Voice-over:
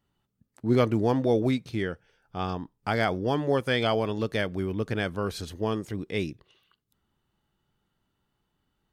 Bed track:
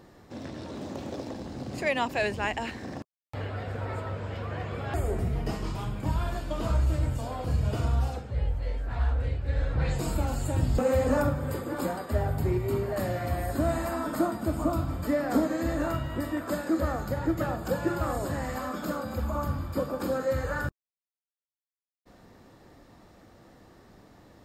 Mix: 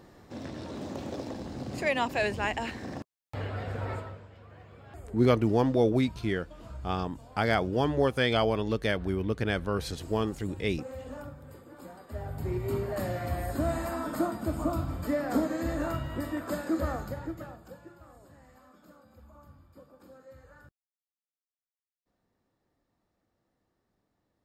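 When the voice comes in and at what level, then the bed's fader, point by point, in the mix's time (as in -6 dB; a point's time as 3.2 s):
4.50 s, -0.5 dB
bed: 3.93 s -0.5 dB
4.3 s -17 dB
11.83 s -17 dB
12.68 s -2.5 dB
16.95 s -2.5 dB
17.95 s -24 dB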